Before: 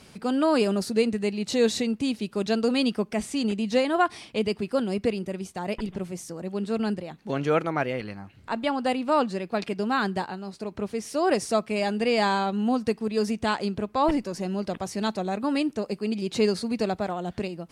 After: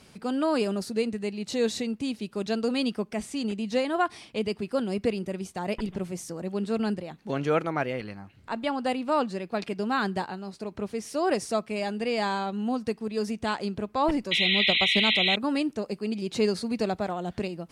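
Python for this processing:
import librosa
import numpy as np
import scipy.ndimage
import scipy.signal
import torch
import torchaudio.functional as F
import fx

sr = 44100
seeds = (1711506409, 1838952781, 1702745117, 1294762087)

y = fx.rider(x, sr, range_db=4, speed_s=2.0)
y = fx.transient(y, sr, attack_db=9, sustain_db=-6, at=(14.5, 15.01))
y = fx.spec_paint(y, sr, seeds[0], shape='noise', start_s=14.31, length_s=1.05, low_hz=1900.0, high_hz=4100.0, level_db=-21.0)
y = y * 10.0 ** (-3.0 / 20.0)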